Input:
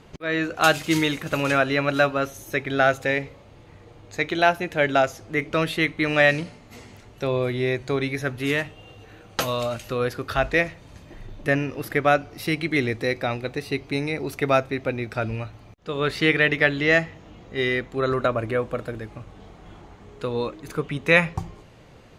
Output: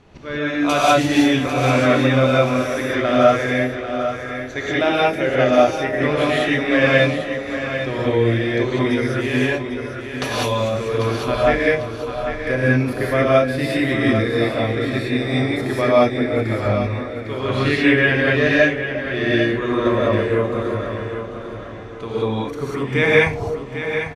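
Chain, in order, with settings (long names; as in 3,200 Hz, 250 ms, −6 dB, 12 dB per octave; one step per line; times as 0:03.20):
high-shelf EQ 11,000 Hz −10.5 dB
repeating echo 732 ms, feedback 33%, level −9.5 dB
dynamic equaliser 1,500 Hz, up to −5 dB, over −35 dBFS, Q 2.1
echo through a band-pass that steps 322 ms, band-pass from 480 Hz, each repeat 0.7 octaves, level −9.5 dB
wrong playback speed 48 kHz file played as 44.1 kHz
reverb whose tail is shaped and stops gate 220 ms rising, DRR −6.5 dB
level −2 dB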